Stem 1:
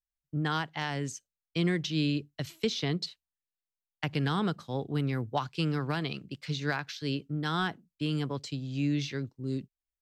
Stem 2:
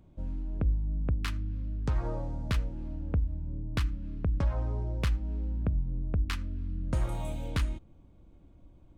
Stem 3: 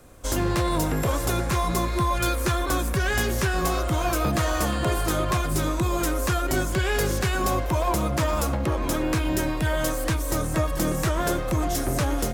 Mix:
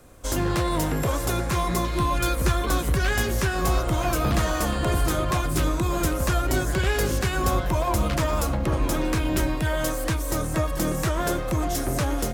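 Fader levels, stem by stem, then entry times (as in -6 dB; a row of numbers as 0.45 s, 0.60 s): -8.0 dB, +1.0 dB, -0.5 dB; 0.00 s, 1.80 s, 0.00 s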